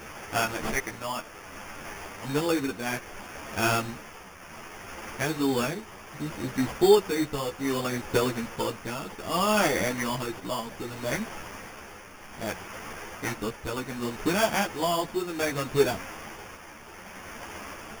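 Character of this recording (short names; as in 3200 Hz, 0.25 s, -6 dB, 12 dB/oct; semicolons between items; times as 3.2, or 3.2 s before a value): a quantiser's noise floor 8-bit, dither triangular; tremolo triangle 0.64 Hz, depth 60%; aliases and images of a low sample rate 4000 Hz, jitter 0%; a shimmering, thickened sound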